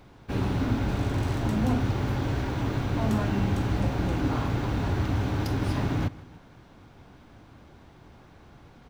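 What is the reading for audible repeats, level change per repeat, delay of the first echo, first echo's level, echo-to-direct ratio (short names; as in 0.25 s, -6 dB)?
2, -5.0 dB, 0.158 s, -21.0 dB, -20.0 dB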